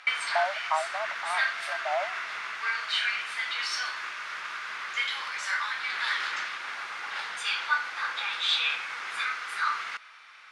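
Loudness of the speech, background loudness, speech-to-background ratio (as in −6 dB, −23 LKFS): −33.0 LKFS, −30.0 LKFS, −3.0 dB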